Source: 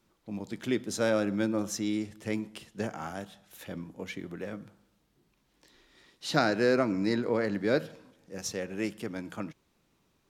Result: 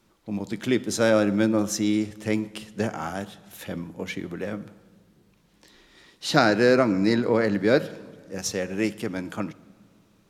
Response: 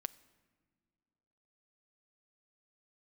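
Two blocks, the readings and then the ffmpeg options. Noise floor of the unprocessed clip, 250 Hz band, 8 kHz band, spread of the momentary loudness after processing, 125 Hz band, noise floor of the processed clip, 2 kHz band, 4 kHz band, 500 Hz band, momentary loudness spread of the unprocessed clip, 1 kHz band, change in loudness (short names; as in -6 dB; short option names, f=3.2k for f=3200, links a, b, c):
-72 dBFS, +7.0 dB, +7.0 dB, 15 LU, +7.0 dB, -62 dBFS, +7.0 dB, +6.5 dB, +7.0 dB, 15 LU, +7.0 dB, +6.5 dB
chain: -filter_complex "[0:a]asplit=2[a][b];[1:a]atrim=start_sample=2205,asetrate=27342,aresample=44100[c];[b][c]afir=irnorm=-1:irlink=0,volume=5.5dB[d];[a][d]amix=inputs=2:normalize=0,volume=-2.5dB"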